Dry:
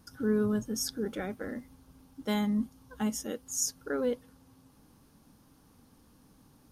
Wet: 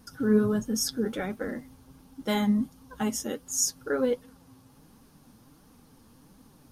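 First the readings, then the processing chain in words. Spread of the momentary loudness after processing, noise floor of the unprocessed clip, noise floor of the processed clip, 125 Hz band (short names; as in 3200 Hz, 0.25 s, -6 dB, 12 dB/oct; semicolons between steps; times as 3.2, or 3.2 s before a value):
12 LU, -62 dBFS, -58 dBFS, +4.0 dB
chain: flange 1.4 Hz, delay 3.7 ms, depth 5.7 ms, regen +43%; gain +8.5 dB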